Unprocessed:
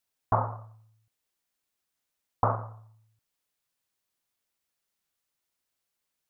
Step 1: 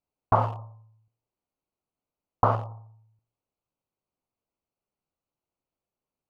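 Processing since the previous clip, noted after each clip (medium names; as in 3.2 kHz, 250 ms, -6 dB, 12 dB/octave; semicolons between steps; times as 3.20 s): local Wiener filter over 25 samples; de-hum 115.5 Hz, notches 9; trim +4.5 dB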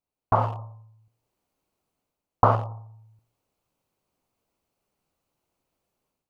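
level rider gain up to 12 dB; trim -1 dB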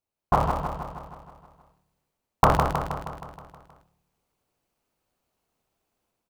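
cycle switcher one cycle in 3, inverted; feedback delay 158 ms, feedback 59%, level -6 dB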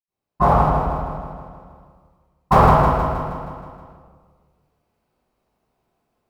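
reverberation RT60 1.6 s, pre-delay 76 ms; trim -4 dB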